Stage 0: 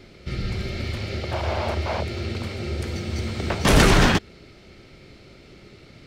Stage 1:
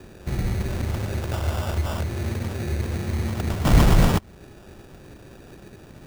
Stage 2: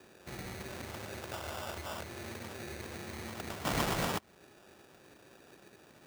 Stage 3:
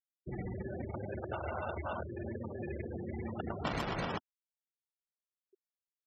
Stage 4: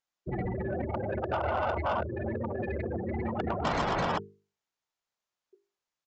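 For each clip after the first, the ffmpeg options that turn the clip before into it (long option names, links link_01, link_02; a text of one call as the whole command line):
ffmpeg -i in.wav -filter_complex "[0:a]lowpass=3800,acrossover=split=220|1900[link_01][link_02][link_03];[link_02]acompressor=threshold=-36dB:ratio=6[link_04];[link_01][link_04][link_03]amix=inputs=3:normalize=0,acrusher=samples=21:mix=1:aa=0.000001,volume=3dB" out.wav
ffmpeg -i in.wav -af "highpass=frequency=570:poles=1,volume=-7dB" out.wav
ffmpeg -i in.wav -af "afftfilt=real='re*gte(hypot(re,im),0.0158)':imag='im*gte(hypot(re,im),0.0158)':win_size=1024:overlap=0.75,acompressor=threshold=-39dB:ratio=5,volume=6dB" out.wav
ffmpeg -i in.wav -af "equalizer=frequency=910:width=0.95:gain=5.5,bandreject=frequency=50:width_type=h:width=6,bandreject=frequency=100:width_type=h:width=6,bandreject=frequency=150:width_type=h:width=6,bandreject=frequency=200:width_type=h:width=6,bandreject=frequency=250:width_type=h:width=6,bandreject=frequency=300:width_type=h:width=6,bandreject=frequency=350:width_type=h:width=6,bandreject=frequency=400:width_type=h:width=6,bandreject=frequency=450:width_type=h:width=6,aresample=16000,asoftclip=type=tanh:threshold=-30.5dB,aresample=44100,volume=8dB" out.wav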